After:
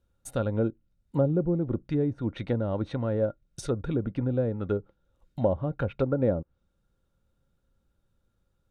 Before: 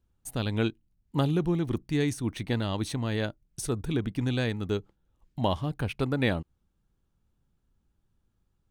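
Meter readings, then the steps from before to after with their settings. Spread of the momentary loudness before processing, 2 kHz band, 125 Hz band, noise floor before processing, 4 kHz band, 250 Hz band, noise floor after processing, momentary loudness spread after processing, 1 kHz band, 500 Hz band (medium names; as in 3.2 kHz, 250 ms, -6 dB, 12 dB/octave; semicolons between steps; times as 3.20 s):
7 LU, -9.0 dB, 0.0 dB, -74 dBFS, -13.5 dB, +0.5 dB, -74 dBFS, 8 LU, -3.5 dB, +4.5 dB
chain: low-pass that closes with the level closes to 600 Hz, closed at -23.5 dBFS; small resonant body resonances 540/1400/3700 Hz, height 13 dB, ringing for 45 ms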